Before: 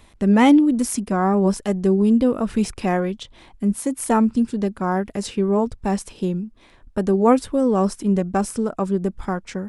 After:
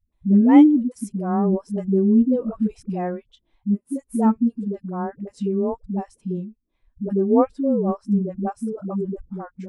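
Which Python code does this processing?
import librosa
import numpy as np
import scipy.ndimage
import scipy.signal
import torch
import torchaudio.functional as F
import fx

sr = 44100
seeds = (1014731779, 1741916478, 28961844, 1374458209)

y = fx.high_shelf(x, sr, hz=10000.0, db=-10.0, at=(7.08, 8.45))
y = fx.dispersion(y, sr, late='highs', ms=125.0, hz=310.0)
y = fx.spectral_expand(y, sr, expansion=1.5)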